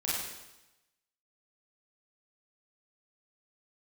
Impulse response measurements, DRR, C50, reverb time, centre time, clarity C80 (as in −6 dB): −8.0 dB, −1.5 dB, 0.95 s, 85 ms, 1.5 dB